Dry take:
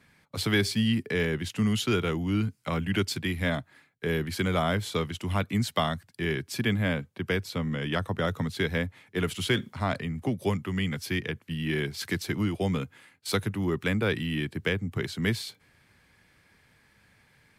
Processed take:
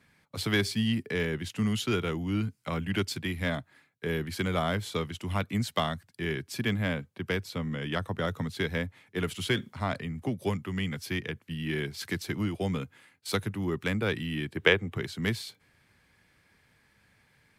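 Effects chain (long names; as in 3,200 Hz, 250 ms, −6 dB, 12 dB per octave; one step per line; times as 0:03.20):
harmonic generator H 3 −20 dB, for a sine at −11 dBFS
gain on a spectral selection 0:14.56–0:14.96, 310–3,900 Hz +9 dB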